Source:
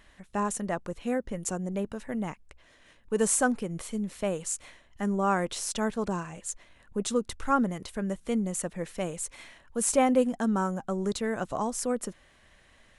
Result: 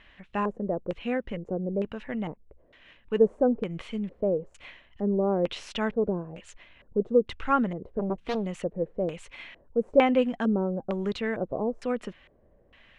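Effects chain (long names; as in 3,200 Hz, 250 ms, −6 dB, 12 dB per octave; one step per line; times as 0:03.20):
auto-filter low-pass square 1.1 Hz 490–2,800 Hz
0:07.99–0:08.46: highs frequency-modulated by the lows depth 0.89 ms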